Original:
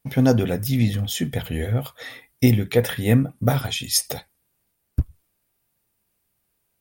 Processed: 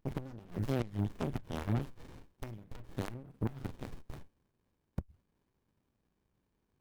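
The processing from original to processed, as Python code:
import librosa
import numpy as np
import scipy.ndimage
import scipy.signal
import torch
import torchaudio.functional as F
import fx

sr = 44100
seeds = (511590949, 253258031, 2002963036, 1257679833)

y = fx.gate_flip(x, sr, shuts_db=-11.0, range_db=-25)
y = fx.tube_stage(y, sr, drive_db=28.0, bias=0.55)
y = fx.running_max(y, sr, window=65)
y = y * librosa.db_to_amplitude(1.5)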